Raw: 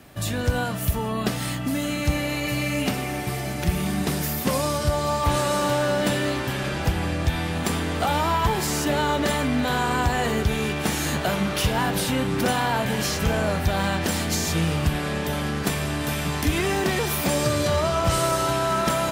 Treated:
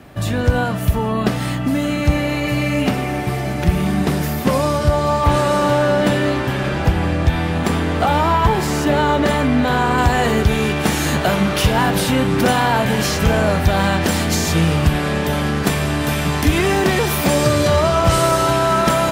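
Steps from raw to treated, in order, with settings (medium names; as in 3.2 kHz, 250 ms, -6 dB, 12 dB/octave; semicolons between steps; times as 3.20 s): treble shelf 3.5 kHz -10.5 dB, from 9.98 s -4 dB; trim +7.5 dB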